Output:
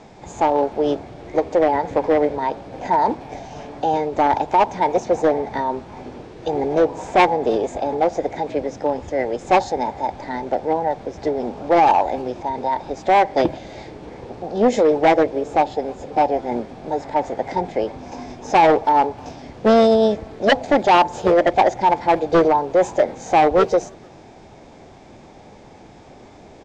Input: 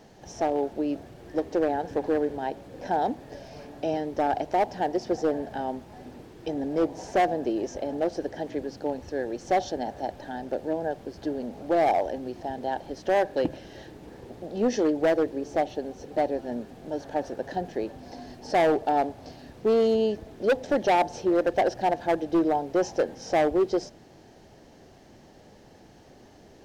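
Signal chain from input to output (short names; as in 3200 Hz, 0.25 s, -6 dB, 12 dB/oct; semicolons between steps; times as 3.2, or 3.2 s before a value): Bessel low-pass 4300 Hz, order 8; speakerphone echo 0.3 s, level -25 dB; formant shift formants +3 st; gain +8.5 dB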